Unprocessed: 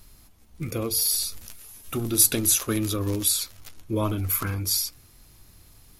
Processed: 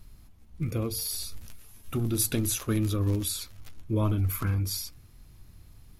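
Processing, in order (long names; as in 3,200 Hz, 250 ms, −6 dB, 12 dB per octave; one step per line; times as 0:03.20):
bass and treble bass +8 dB, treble −5 dB
level −5 dB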